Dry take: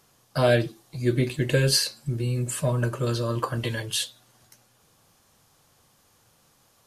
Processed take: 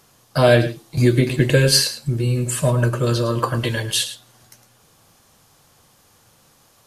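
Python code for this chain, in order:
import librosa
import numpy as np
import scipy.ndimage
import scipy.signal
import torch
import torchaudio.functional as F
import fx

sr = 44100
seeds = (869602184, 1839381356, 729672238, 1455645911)

y = x + 10.0 ** (-12.5 / 20.0) * np.pad(x, (int(108 * sr / 1000.0), 0))[:len(x)]
y = fx.band_squash(y, sr, depth_pct=100, at=(0.97, 1.5))
y = y * librosa.db_to_amplitude(6.5)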